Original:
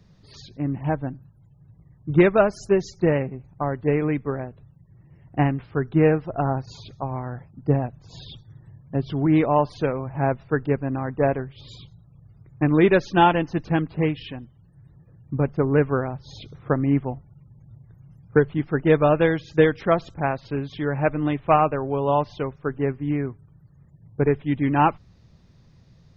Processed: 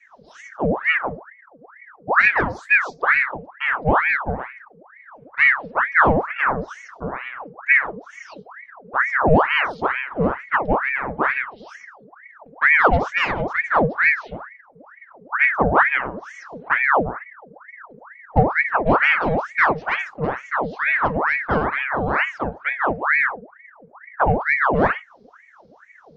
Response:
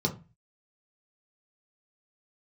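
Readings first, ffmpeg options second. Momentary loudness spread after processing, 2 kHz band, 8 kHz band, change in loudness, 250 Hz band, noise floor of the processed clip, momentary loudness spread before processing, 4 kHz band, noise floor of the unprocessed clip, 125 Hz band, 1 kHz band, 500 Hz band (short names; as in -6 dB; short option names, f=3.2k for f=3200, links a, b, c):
15 LU, +15.0 dB, n/a, +3.5 dB, -5.0 dB, -51 dBFS, 15 LU, +3.5 dB, -54 dBFS, -5.0 dB, +5.0 dB, -2.0 dB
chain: -filter_complex "[0:a]acontrast=63[a];[1:a]atrim=start_sample=2205,afade=t=out:st=0.18:d=0.01,atrim=end_sample=8379[b];[a][b]afir=irnorm=-1:irlink=0,aeval=exprs='val(0)*sin(2*PI*1200*n/s+1200*0.75/2.2*sin(2*PI*2.2*n/s))':c=same,volume=-17.5dB"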